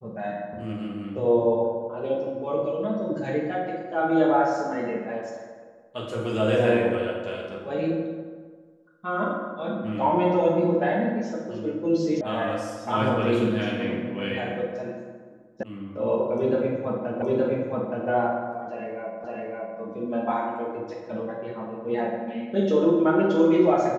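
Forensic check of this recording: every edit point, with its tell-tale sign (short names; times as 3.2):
12.21 sound cut off
15.63 sound cut off
17.22 repeat of the last 0.87 s
19.24 repeat of the last 0.56 s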